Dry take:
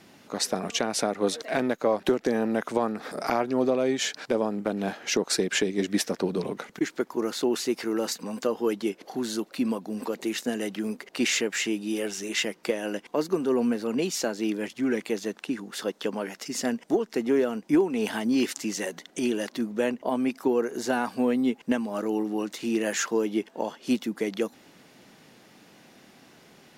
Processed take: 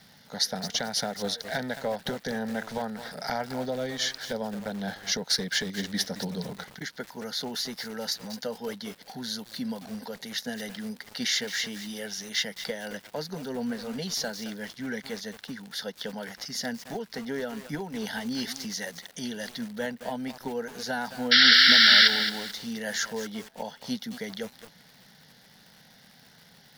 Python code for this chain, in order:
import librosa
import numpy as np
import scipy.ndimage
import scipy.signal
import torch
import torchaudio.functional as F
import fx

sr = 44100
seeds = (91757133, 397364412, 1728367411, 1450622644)

y = fx.peak_eq(x, sr, hz=6500.0, db=13.5, octaves=1.1)
y = fx.spec_paint(y, sr, seeds[0], shape='noise', start_s=21.31, length_s=0.77, low_hz=1300.0, high_hz=5700.0, level_db=-13.0)
y = fx.fixed_phaser(y, sr, hz=1700.0, stages=8)
y = fx.dmg_crackle(y, sr, seeds[1], per_s=320.0, level_db=-43.0)
y = fx.graphic_eq_15(y, sr, hz=(160, 630, 6300), db=(4, -6, -7))
y = fx.echo_crushed(y, sr, ms=219, feedback_pct=35, bits=6, wet_db=-9.5)